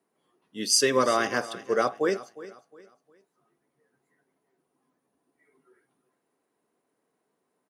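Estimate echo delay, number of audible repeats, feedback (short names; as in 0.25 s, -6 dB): 0.358 s, 2, 33%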